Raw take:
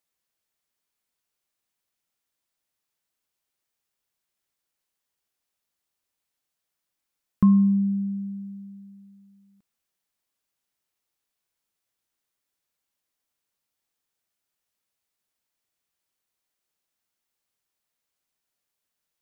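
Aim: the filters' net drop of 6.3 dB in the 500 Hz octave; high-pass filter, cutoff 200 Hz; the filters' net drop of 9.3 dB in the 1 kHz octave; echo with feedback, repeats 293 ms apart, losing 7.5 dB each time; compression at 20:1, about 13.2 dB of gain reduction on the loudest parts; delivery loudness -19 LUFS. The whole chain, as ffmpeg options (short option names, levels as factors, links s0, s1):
-af "highpass=200,equalizer=f=500:t=o:g=-7.5,equalizer=f=1000:t=o:g=-8.5,acompressor=threshold=0.0282:ratio=20,aecho=1:1:293|586|879|1172|1465:0.422|0.177|0.0744|0.0312|0.0131,volume=6.31"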